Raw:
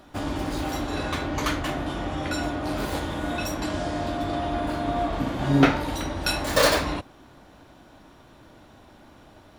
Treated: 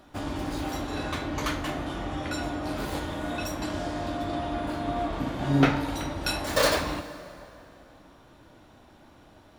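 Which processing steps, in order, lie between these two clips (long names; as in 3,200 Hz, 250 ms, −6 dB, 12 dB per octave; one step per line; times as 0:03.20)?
dense smooth reverb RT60 3.1 s, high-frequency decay 0.7×, DRR 12 dB
level −3.5 dB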